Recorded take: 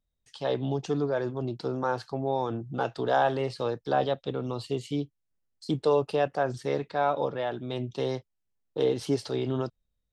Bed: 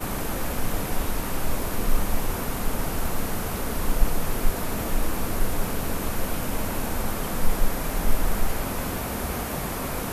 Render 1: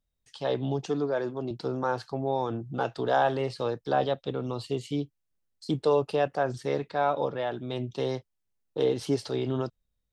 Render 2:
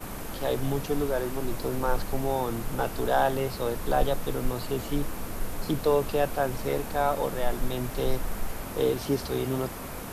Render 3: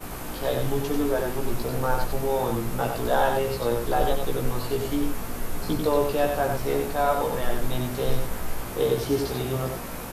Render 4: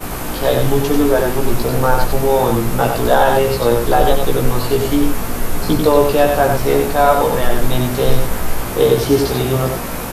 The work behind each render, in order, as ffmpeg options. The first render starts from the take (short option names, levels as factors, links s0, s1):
-filter_complex "[0:a]asettb=1/sr,asplit=3[s0][s1][s2];[s0]atrim=end=0.864[s3];[s1]atrim=start=0.86:end=1.51,asetpts=PTS-STARTPTS,afade=t=in:d=0.004:c=qsin,afade=t=out:st=0.646:d=0.004:c=qsin,highpass=170[s4];[s2]atrim=start=1.506[s5];[s3][s4]acrossfade=d=0.004:c1=hsin:c2=qsin[s6];[s6][s5]acrossfade=d=0.004:c1=qsin:c2=hsin"
-filter_complex "[1:a]volume=0.398[s0];[0:a][s0]amix=inputs=2:normalize=0"
-filter_complex "[0:a]asplit=2[s0][s1];[s1]adelay=17,volume=0.668[s2];[s0][s2]amix=inputs=2:normalize=0,asplit=2[s3][s4];[s4]aecho=0:1:93:0.562[s5];[s3][s5]amix=inputs=2:normalize=0"
-af "volume=3.55,alimiter=limit=0.891:level=0:latency=1"